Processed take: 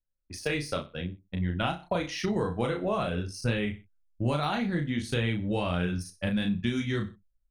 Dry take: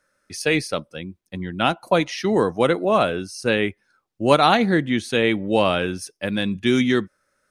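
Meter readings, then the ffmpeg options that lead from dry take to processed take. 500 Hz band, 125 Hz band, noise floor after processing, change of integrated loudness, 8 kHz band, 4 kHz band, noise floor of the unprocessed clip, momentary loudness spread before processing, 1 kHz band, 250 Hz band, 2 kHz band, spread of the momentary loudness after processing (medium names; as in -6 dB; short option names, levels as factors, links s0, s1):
-12.0 dB, -1.5 dB, -75 dBFS, -9.5 dB, -8.5 dB, -10.0 dB, -73 dBFS, 12 LU, -12.5 dB, -8.0 dB, -10.5 dB, 6 LU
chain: -filter_complex "[0:a]flanger=delay=0.3:depth=8.7:regen=-54:speed=0.56:shape=triangular,asubboost=boost=4:cutoff=170,anlmdn=0.398,aecho=1:1:62|124:0.133|0.032,acompressor=threshold=0.0501:ratio=12,asplit=2[s0][s1];[s1]adelay=34,volume=0.596[s2];[s0][s2]amix=inputs=2:normalize=0,deesser=0.85,lowshelf=f=63:g=7"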